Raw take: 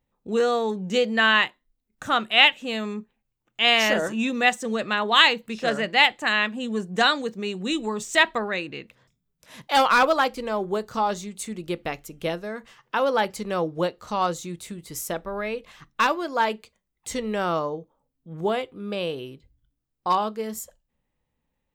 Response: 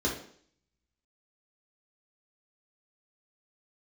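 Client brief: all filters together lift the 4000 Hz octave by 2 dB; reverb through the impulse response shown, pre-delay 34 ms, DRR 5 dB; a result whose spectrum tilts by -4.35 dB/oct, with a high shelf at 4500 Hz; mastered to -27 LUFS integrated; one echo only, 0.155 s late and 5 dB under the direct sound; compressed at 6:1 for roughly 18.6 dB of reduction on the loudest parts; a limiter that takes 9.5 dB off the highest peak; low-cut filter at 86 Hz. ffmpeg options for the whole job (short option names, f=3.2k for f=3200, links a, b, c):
-filter_complex "[0:a]highpass=86,equalizer=f=4k:t=o:g=6,highshelf=f=4.5k:g=-6.5,acompressor=threshold=-31dB:ratio=6,alimiter=level_in=0.5dB:limit=-24dB:level=0:latency=1,volume=-0.5dB,aecho=1:1:155:0.562,asplit=2[a][b];[1:a]atrim=start_sample=2205,adelay=34[c];[b][c]afir=irnorm=-1:irlink=0,volume=-13.5dB[d];[a][d]amix=inputs=2:normalize=0,volume=5.5dB"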